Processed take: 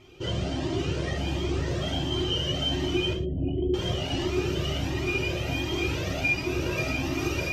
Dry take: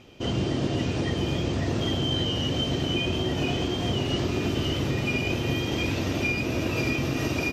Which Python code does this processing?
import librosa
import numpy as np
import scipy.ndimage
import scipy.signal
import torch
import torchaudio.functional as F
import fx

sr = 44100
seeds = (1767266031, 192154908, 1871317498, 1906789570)

y = fx.envelope_sharpen(x, sr, power=3.0, at=(3.13, 3.74))
y = fx.rev_gated(y, sr, seeds[0], gate_ms=140, shape='falling', drr_db=-0.5)
y = fx.comb_cascade(y, sr, direction='rising', hz=1.4)